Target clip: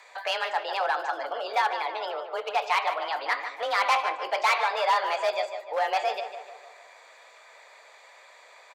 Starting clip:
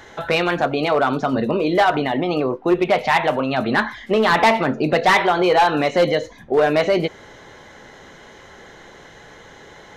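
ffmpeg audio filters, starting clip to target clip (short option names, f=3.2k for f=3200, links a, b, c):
-filter_complex "[0:a]highpass=f=490:w=0.5412,highpass=f=490:w=1.3066,asetrate=50274,aresample=44100,afreqshift=27,asplit=2[a][b];[b]adelay=149,lowpass=f=2.8k:p=1,volume=-8dB,asplit=2[c][d];[d]adelay=149,lowpass=f=2.8k:p=1,volume=0.54,asplit=2[e][f];[f]adelay=149,lowpass=f=2.8k:p=1,volume=0.54,asplit=2[g][h];[h]adelay=149,lowpass=f=2.8k:p=1,volume=0.54,asplit=2[i][j];[j]adelay=149,lowpass=f=2.8k:p=1,volume=0.54,asplit=2[k][l];[l]adelay=149,lowpass=f=2.8k:p=1,volume=0.54[m];[a][c][e][g][i][k][m]amix=inputs=7:normalize=0,volume=-8dB"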